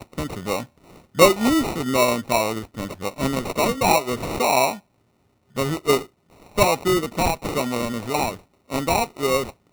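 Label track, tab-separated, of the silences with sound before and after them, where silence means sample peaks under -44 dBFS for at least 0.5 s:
4.800000	5.550000	silence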